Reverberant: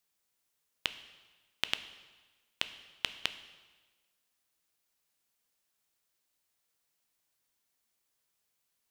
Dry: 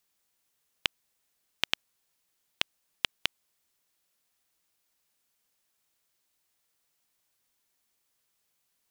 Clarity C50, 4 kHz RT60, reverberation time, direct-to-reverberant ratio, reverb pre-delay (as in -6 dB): 13.0 dB, 1.2 s, 1.3 s, 10.5 dB, 5 ms